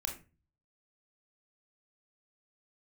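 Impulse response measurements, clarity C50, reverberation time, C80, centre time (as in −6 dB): 8.5 dB, 0.30 s, 14.5 dB, 20 ms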